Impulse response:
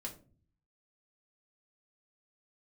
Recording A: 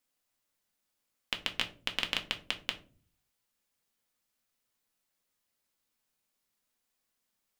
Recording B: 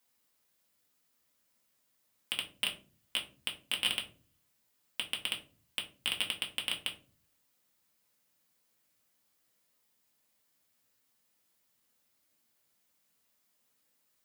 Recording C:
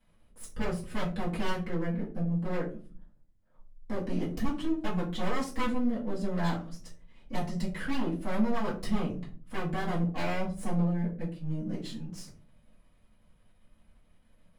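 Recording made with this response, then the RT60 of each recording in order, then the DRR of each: B; 0.40 s, 0.40 s, 0.40 s; 4.0 dB, -1.0 dB, -8.5 dB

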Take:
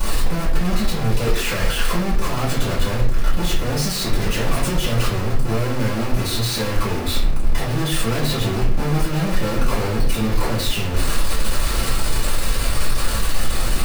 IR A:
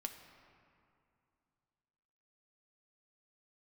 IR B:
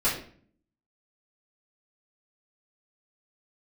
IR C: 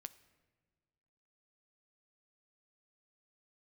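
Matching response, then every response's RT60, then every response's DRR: B; 2.5 s, 0.50 s, no single decay rate; 4.5 dB, -9.5 dB, 12.5 dB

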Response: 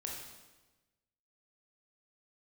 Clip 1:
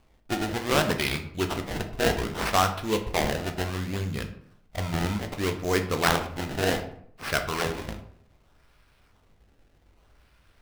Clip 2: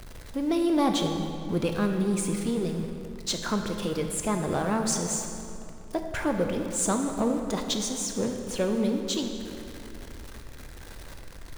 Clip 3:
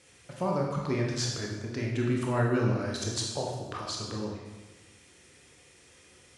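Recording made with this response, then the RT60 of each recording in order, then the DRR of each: 3; 0.65 s, 2.8 s, 1.2 s; 5.5 dB, 4.0 dB, -1.5 dB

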